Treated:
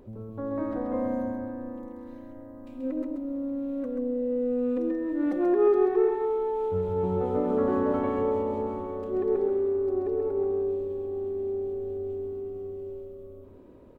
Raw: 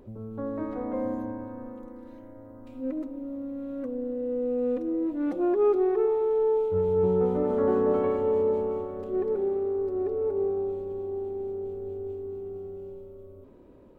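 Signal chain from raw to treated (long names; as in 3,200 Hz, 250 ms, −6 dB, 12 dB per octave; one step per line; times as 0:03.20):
single-tap delay 133 ms −4.5 dB
0:04.89–0:06.24: steady tone 1,800 Hz −51 dBFS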